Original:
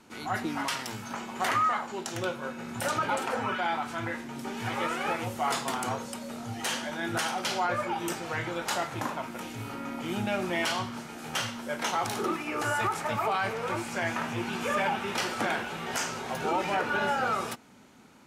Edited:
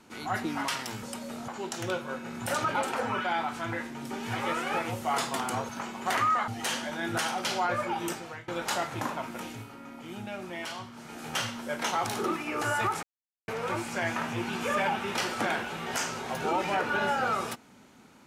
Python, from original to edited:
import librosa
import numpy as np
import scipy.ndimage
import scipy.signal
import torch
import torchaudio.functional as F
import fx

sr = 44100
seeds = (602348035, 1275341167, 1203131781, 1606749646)

y = fx.edit(x, sr, fx.swap(start_s=1.03, length_s=0.79, other_s=6.03, other_length_s=0.45),
    fx.fade_out_to(start_s=8.05, length_s=0.43, floor_db=-23.5),
    fx.fade_down_up(start_s=9.42, length_s=1.8, db=-8.5, fade_s=0.25, curve='qsin'),
    fx.silence(start_s=13.03, length_s=0.45), tone=tone)